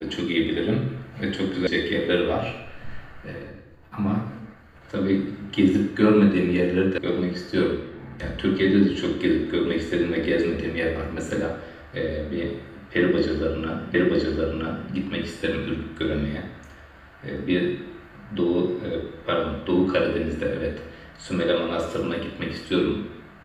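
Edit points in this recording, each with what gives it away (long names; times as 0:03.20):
0:01.67: cut off before it has died away
0:06.98: cut off before it has died away
0:13.94: the same again, the last 0.97 s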